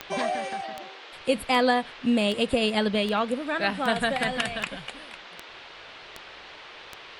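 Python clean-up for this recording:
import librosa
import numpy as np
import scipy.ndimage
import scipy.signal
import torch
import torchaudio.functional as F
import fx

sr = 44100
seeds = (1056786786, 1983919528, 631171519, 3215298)

y = fx.fix_declick_ar(x, sr, threshold=10.0)
y = fx.noise_reduce(y, sr, print_start_s=5.59, print_end_s=6.09, reduce_db=26.0)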